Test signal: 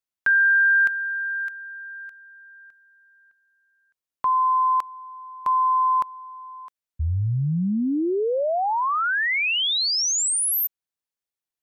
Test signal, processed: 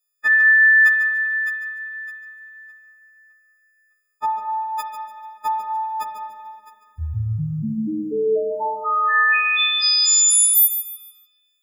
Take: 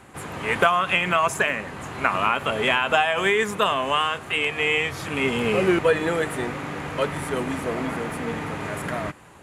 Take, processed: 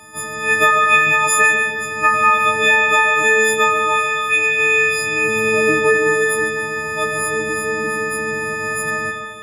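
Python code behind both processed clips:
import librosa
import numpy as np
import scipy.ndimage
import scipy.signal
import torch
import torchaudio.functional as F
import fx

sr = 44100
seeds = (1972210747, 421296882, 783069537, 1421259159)

p1 = fx.freq_snap(x, sr, grid_st=6)
p2 = p1 + fx.echo_feedback(p1, sr, ms=146, feedback_pct=32, wet_db=-10, dry=0)
p3 = fx.rev_spring(p2, sr, rt60_s=2.0, pass_ms=(34, 47), chirp_ms=50, drr_db=4.0)
y = fx.dynamic_eq(p3, sr, hz=600.0, q=7.5, threshold_db=-38.0, ratio=8.0, max_db=-7)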